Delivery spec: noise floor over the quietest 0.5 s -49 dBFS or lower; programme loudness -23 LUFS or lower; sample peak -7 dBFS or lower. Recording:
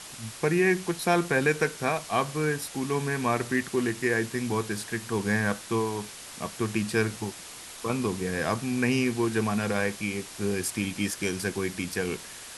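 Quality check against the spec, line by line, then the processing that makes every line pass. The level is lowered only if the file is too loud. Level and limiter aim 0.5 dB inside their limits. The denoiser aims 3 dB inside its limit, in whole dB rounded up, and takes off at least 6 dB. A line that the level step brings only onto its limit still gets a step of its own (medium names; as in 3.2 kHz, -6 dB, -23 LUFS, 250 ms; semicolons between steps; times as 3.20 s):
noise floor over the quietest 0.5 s -43 dBFS: fail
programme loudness -28.0 LUFS: pass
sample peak -10.5 dBFS: pass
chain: noise reduction 9 dB, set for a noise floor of -43 dBFS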